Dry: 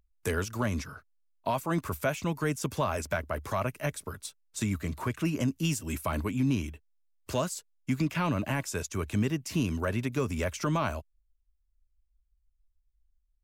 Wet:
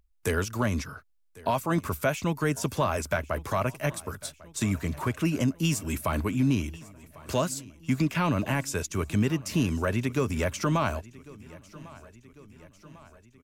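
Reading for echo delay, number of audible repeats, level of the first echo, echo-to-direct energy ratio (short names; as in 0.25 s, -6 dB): 1.098 s, 4, -21.0 dB, -19.0 dB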